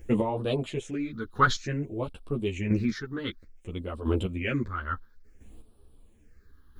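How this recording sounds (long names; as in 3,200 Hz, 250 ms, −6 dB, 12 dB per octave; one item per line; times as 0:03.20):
a quantiser's noise floor 12 bits, dither none
phaser sweep stages 6, 0.56 Hz, lowest notch 620–1,900 Hz
chopped level 0.74 Hz, depth 60%, duty 15%
a shimmering, thickened sound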